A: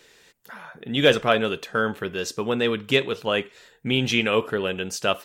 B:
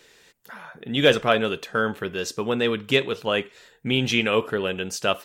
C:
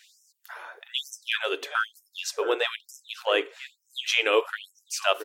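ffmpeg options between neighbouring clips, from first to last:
ffmpeg -i in.wav -af anull out.wav
ffmpeg -i in.wav -filter_complex "[0:a]asplit=2[link_01][link_02];[link_02]adelay=675,lowpass=frequency=900:poles=1,volume=-9.5dB,asplit=2[link_03][link_04];[link_04]adelay=675,lowpass=frequency=900:poles=1,volume=0.49,asplit=2[link_05][link_06];[link_06]adelay=675,lowpass=frequency=900:poles=1,volume=0.49,asplit=2[link_07][link_08];[link_08]adelay=675,lowpass=frequency=900:poles=1,volume=0.49,asplit=2[link_09][link_10];[link_10]adelay=675,lowpass=frequency=900:poles=1,volume=0.49[link_11];[link_01][link_03][link_05][link_07][link_09][link_11]amix=inputs=6:normalize=0,afftfilt=real='re*gte(b*sr/1024,270*pow(5300/270,0.5+0.5*sin(2*PI*1.1*pts/sr)))':imag='im*gte(b*sr/1024,270*pow(5300/270,0.5+0.5*sin(2*PI*1.1*pts/sr)))':win_size=1024:overlap=0.75" out.wav

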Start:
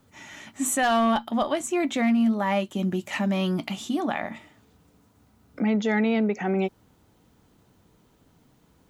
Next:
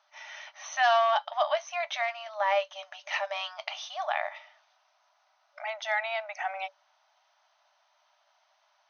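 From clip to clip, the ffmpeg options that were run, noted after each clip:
ffmpeg -i in.wav -af "afftfilt=real='re*between(b*sr/4096,580,6400)':imag='im*between(b*sr/4096,580,6400)':win_size=4096:overlap=0.75" out.wav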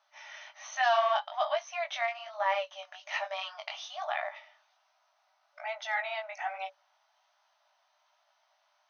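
ffmpeg -i in.wav -af "flanger=delay=15.5:depth=6.3:speed=1.2" out.wav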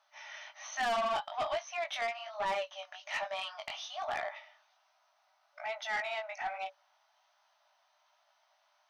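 ffmpeg -i in.wav -af "asoftclip=type=tanh:threshold=-28dB" out.wav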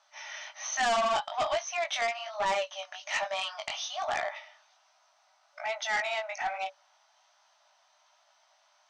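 ffmpeg -i in.wav -af "lowpass=frequency=7400:width_type=q:width=2.6,volume=4.5dB" out.wav

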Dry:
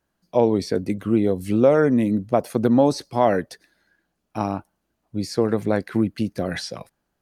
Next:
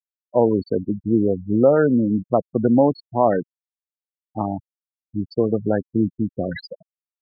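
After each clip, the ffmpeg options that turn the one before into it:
ffmpeg -i in.wav -af "afftfilt=real='re*gte(hypot(re,im),0.126)':imag='im*gte(hypot(re,im),0.126)':win_size=1024:overlap=0.75,volume=1dB" out.wav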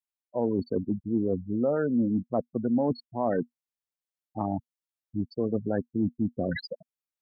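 ffmpeg -i in.wav -af "adynamicequalizer=threshold=0.02:dfrequency=240:dqfactor=7.9:tfrequency=240:tqfactor=7.9:attack=5:release=100:ratio=0.375:range=3.5:mode=boostabove:tftype=bell,areverse,acompressor=threshold=-23dB:ratio=4,areverse,volume=-1.5dB" out.wav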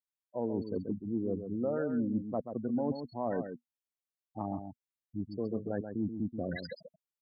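ffmpeg -i in.wav -filter_complex "[0:a]asplit=2[link_01][link_02];[link_02]adelay=134.1,volume=-8dB,highshelf=frequency=4000:gain=-3.02[link_03];[link_01][link_03]amix=inputs=2:normalize=0,volume=-7dB" out.wav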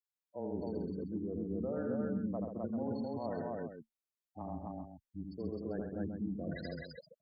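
ffmpeg -i in.wav -af "aecho=1:1:81.63|259.5:0.631|0.891,afreqshift=-16,volume=-7dB" out.wav

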